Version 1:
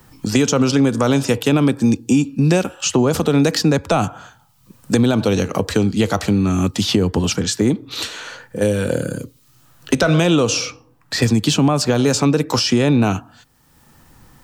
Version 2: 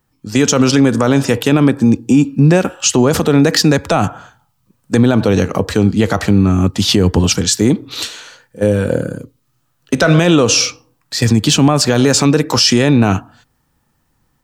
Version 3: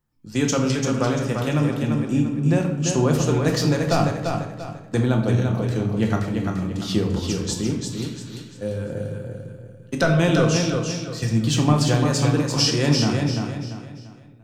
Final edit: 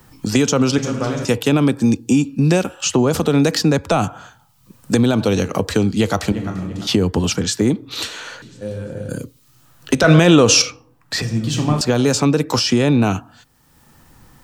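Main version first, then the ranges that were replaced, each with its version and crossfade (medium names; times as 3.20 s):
1
0.78–1.25 s: from 3
6.32–6.87 s: from 3
8.42–9.09 s: from 3
10.04–10.62 s: from 2
11.22–11.81 s: from 3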